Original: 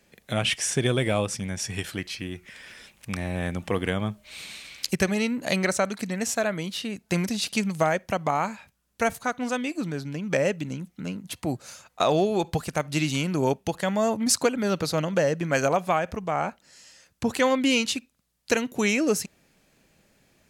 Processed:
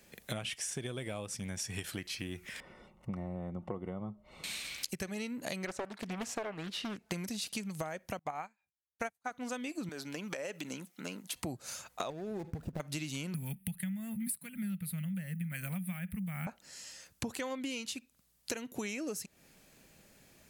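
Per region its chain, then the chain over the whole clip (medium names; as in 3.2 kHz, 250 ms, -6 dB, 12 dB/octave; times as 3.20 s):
2.60–4.44 s: Savitzky-Golay filter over 65 samples + comb 5.5 ms, depth 32%
5.67–7.12 s: overdrive pedal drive 10 dB, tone 1.3 kHz, clips at -10 dBFS + loudspeaker Doppler distortion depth 0.73 ms
8.19–9.31 s: dynamic bell 1.7 kHz, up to +6 dB, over -39 dBFS, Q 1.2 + small resonant body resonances 760/2400 Hz, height 9 dB, ringing for 35 ms + upward expansion 2.5:1, over -40 dBFS
9.89–11.36 s: high-pass 250 Hz + bass shelf 390 Hz -7 dB + compression, threshold -33 dBFS
12.10–12.80 s: median filter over 41 samples + bass shelf 470 Hz +7 dB + compression 10:1, threshold -26 dBFS
13.34–16.47 s: block-companded coder 7-bit + FFT filter 120 Hz 0 dB, 190 Hz +13 dB, 330 Hz -24 dB, 1.1 kHz -17 dB, 2 kHz +2 dB, 3.7 kHz -6 dB, 6.2 kHz -23 dB, 9.4 kHz +10 dB
whole clip: treble shelf 8.1 kHz +8 dB; compression 16:1, threshold -35 dBFS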